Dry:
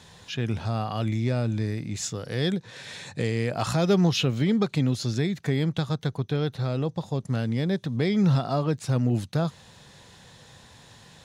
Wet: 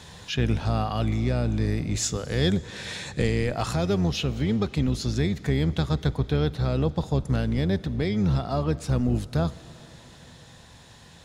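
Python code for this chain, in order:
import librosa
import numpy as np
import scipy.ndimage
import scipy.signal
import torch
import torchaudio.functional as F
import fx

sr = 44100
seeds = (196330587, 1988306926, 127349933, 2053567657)

y = fx.octave_divider(x, sr, octaves=1, level_db=-5.0)
y = fx.rider(y, sr, range_db=5, speed_s=0.5)
y = fx.rev_plate(y, sr, seeds[0], rt60_s=4.3, hf_ratio=0.95, predelay_ms=0, drr_db=17.5)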